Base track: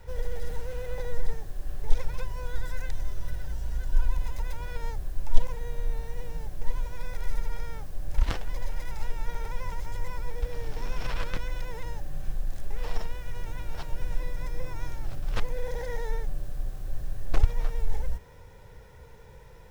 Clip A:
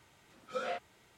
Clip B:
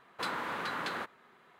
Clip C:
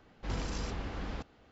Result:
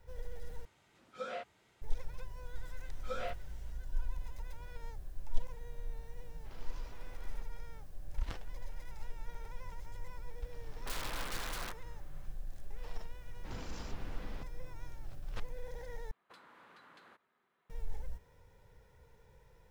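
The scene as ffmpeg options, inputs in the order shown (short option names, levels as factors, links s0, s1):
-filter_complex "[1:a]asplit=2[s0][s1];[3:a]asplit=2[s2][s3];[2:a]asplit=2[s4][s5];[0:a]volume=0.237[s6];[s0]highshelf=f=9200:g=-6.5[s7];[s2]highpass=320,lowpass=5500[s8];[s4]aeval=exprs='(mod(35.5*val(0)+1,2)-1)/35.5':c=same[s9];[s5]acompressor=threshold=0.00794:ratio=6:attack=87:release=157:knee=1:detection=rms[s10];[s6]asplit=3[s11][s12][s13];[s11]atrim=end=0.654[s14];[s7]atrim=end=1.17,asetpts=PTS-STARTPTS,volume=0.596[s15];[s12]atrim=start=1.816:end=16.114[s16];[s10]atrim=end=1.59,asetpts=PTS-STARTPTS,volume=0.133[s17];[s13]atrim=start=17.696[s18];[s1]atrim=end=1.17,asetpts=PTS-STARTPTS,volume=0.668,afade=t=in:d=0.004:c=hsin,afade=t=out:st=1.166:d=0.004:c=hsin,adelay=2550[s19];[s8]atrim=end=1.51,asetpts=PTS-STARTPTS,volume=0.168,afade=t=in:d=0.004:c=hsin,afade=t=out:st=1.506:d=0.004:c=hsin,adelay=6210[s20];[s9]atrim=end=1.59,asetpts=PTS-STARTPTS,volume=0.531,afade=t=in:d=0.004:c=hsin,afade=t=out:st=1.586:d=0.004:c=hsin,adelay=10670[s21];[s3]atrim=end=1.51,asetpts=PTS-STARTPTS,volume=0.376,afade=t=in:d=0.004:c=hsin,afade=t=out:st=1.506:d=0.004:c=hsin,adelay=13210[s22];[s14][s15]acrossfade=d=0.004:c1=hsin:c2=hsin[s23];[s23][s16]acrossfade=d=0.004:c1=hsin:c2=hsin[s24];[s24][s17]acrossfade=d=0.004:c1=hsin:c2=hsin[s25];[s25][s18]acrossfade=d=0.004:c1=hsin:c2=hsin[s26];[s26][s19][s20][s21][s22]amix=inputs=5:normalize=0"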